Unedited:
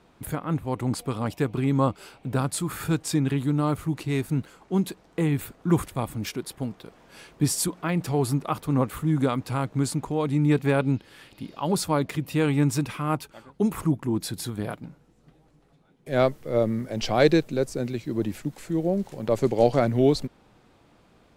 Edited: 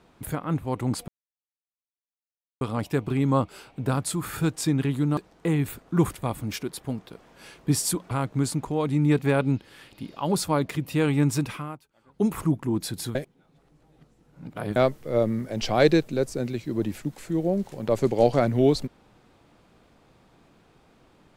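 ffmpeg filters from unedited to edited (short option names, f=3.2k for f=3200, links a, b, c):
-filter_complex "[0:a]asplit=8[a][b][c][d][e][f][g][h];[a]atrim=end=1.08,asetpts=PTS-STARTPTS,afade=t=out:st=1.076:d=0.004:c=hsin,apad=pad_dur=1.53[i];[b]atrim=start=1.08:end=3.642,asetpts=PTS-STARTPTS,afade=t=in:d=0.004:c=hsin[j];[c]atrim=start=4.898:end=7.842[k];[d]atrim=start=9.508:end=13.23,asetpts=PTS-STARTPTS,afade=t=out:st=3.442:d=0.28:c=qua:silence=0.0944061[l];[e]atrim=start=13.23:end=13.33,asetpts=PTS-STARTPTS,volume=-20.5dB[m];[f]atrim=start=13.33:end=14.552,asetpts=PTS-STARTPTS,afade=t=in:d=0.28:c=qua:silence=0.0944061[n];[g]atrim=start=14.548:end=16.162,asetpts=PTS-STARTPTS,areverse[o];[h]atrim=start=16.158[p];[i][j]concat=n=2:v=0:a=1[q];[q][k]acrossfade=d=0.004:c1=hsin:c2=hsin[r];[l][m][n]concat=n=3:v=0:a=1[s];[r][s]acrossfade=d=0.004:c1=hsin:c2=hsin[t];[t][o]acrossfade=d=0.004:c1=hsin:c2=hsin[u];[u][p]acrossfade=d=0.004:c1=hsin:c2=hsin"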